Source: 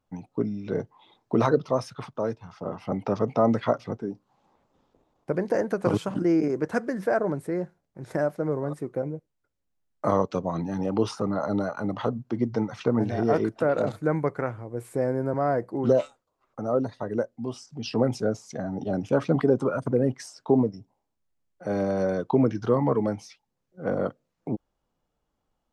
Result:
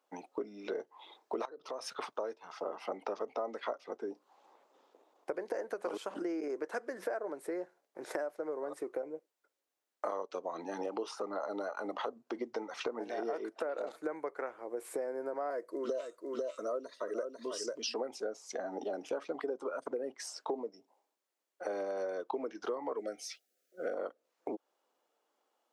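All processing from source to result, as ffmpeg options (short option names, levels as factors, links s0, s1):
-filter_complex "[0:a]asettb=1/sr,asplit=3[s0][s1][s2];[s0]atrim=end=1.454[s3];[s1]atrim=start=1.45:end=1.92,asetpts=PTS-STARTPTS,afade=t=in:d=0.004:c=qsin,afade=t=out:st=0.466:d=0.004:c=qsin,bandreject=f=2100:w=25,acompressor=threshold=0.0158:ratio=6:attack=3.2:release=140:knee=1:detection=peak[s4];[s2]atrim=start=1.916[s5];[s3][s4]acrossfade=d=0.004:c1=hsin:c2=qsin[s6];[s6][s5]acrossfade=d=0.004:c1=qsin:c2=hsin,asettb=1/sr,asplit=3[s7][s8][s9];[s7]atrim=end=15.504[s10];[s8]atrim=start=15.5:end=17.94,asetpts=PTS-STARTPTS,afade=t=in:d=0.004:c=qsin,afade=t=out:st=2.436:d=0.004:c=qsin,asuperstop=centerf=800:order=8:qfactor=3.2,bass=f=250:g=-2,treble=f=4000:g=7,aecho=1:1:496:0.447,atrim=end_sample=107604[s11];[s9]atrim=start=17.936[s12];[s10][s11]acrossfade=d=0.004:c1=hsin:c2=qsin[s13];[s13][s12]acrossfade=d=0.004:c1=qsin:c2=hsin,asettb=1/sr,asplit=3[s14][s15][s16];[s14]atrim=end=22.994[s17];[s15]atrim=start=22.99:end=23.94,asetpts=PTS-STARTPTS,afade=t=in:d=0.004:c=qsin,afade=t=out:st=0.946:d=0.004:c=qsin,asuperstop=centerf=960:order=12:qfactor=2,highshelf=f=6400:g=11.5[s18];[s16]atrim=start=23.936[s19];[s17][s18]acrossfade=d=0.004:c1=hsin:c2=qsin[s20];[s20][s19]acrossfade=d=0.004:c1=qsin:c2=hsin,highpass=f=360:w=0.5412,highpass=f=360:w=1.3066,acompressor=threshold=0.0126:ratio=6,volume=1.41"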